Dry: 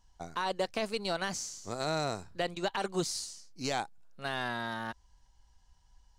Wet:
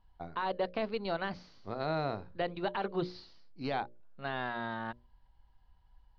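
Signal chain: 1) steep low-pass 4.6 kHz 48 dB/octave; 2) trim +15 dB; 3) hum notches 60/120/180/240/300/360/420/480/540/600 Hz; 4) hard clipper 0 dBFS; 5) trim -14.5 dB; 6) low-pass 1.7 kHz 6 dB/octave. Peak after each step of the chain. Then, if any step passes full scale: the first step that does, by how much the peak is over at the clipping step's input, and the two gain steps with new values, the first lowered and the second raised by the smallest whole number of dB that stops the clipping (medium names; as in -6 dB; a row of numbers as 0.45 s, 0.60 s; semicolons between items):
-20.0 dBFS, -5.0 dBFS, -4.5 dBFS, -4.5 dBFS, -19.0 dBFS, -21.5 dBFS; nothing clips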